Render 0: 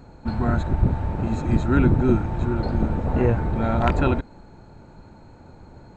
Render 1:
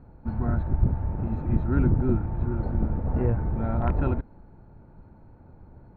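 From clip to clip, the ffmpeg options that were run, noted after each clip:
ffmpeg -i in.wav -af "lowpass=1700,lowshelf=frequency=180:gain=7.5,volume=-8.5dB" out.wav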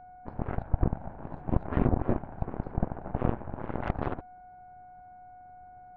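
ffmpeg -i in.wav -af "aeval=exprs='val(0)+0.02*sin(2*PI*730*n/s)':channel_layout=same,aeval=exprs='0.398*(cos(1*acos(clip(val(0)/0.398,-1,1)))-cos(1*PI/2))+0.0794*(cos(4*acos(clip(val(0)/0.398,-1,1)))-cos(4*PI/2))+0.0794*(cos(7*acos(clip(val(0)/0.398,-1,1)))-cos(7*PI/2))':channel_layout=same,volume=-5dB" out.wav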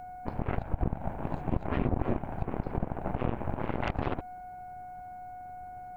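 ffmpeg -i in.wav -af "alimiter=limit=-22.5dB:level=0:latency=1:release=146,aexciter=amount=2.4:drive=5.9:freq=2200,volume=6.5dB" out.wav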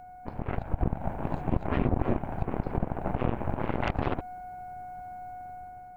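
ffmpeg -i in.wav -af "dynaudnorm=framelen=160:gausssize=7:maxgain=6dB,volume=-3.5dB" out.wav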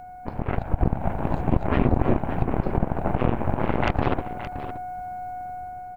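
ffmpeg -i in.wav -af "aecho=1:1:570:0.266,volume=6dB" out.wav

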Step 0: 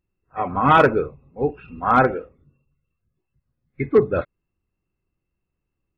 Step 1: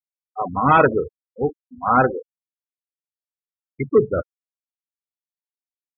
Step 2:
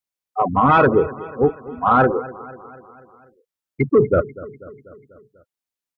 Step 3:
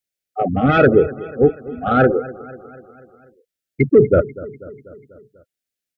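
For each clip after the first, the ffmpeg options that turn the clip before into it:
ffmpeg -i in.wav -af "afftfilt=real='re*gte(hypot(re,im),0.126)':imag='im*gte(hypot(re,im),0.126)':win_size=1024:overlap=0.75" out.wav
ffmpeg -i in.wav -af "alimiter=limit=-11.5dB:level=0:latency=1:release=17,aecho=1:1:245|490|735|980|1225:0.112|0.0662|0.0391|0.023|0.0136,acontrast=61" out.wav
ffmpeg -i in.wav -af "asuperstop=centerf=1000:order=4:qfactor=1.4,volume=3.5dB" out.wav

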